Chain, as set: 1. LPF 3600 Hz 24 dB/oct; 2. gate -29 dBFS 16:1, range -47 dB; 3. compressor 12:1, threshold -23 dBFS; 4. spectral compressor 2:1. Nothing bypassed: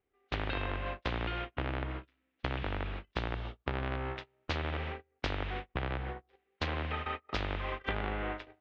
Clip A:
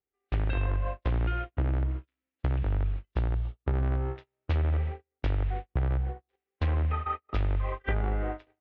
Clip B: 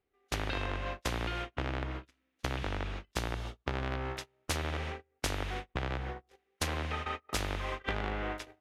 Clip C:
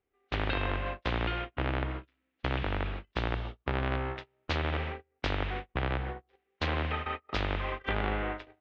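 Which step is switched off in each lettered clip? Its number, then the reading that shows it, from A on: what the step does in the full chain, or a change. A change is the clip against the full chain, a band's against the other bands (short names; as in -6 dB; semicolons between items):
4, 4 kHz band -9.5 dB; 1, 4 kHz band +2.0 dB; 3, mean gain reduction 3.0 dB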